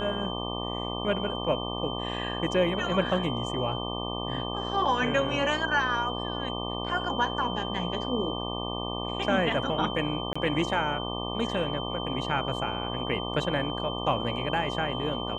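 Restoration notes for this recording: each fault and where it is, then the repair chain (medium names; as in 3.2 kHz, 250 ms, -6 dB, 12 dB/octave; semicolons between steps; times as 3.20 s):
buzz 60 Hz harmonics 20 -34 dBFS
whine 3.1 kHz -36 dBFS
10.33–10.36 s: dropout 25 ms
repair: band-stop 3.1 kHz, Q 30; de-hum 60 Hz, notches 20; interpolate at 10.33 s, 25 ms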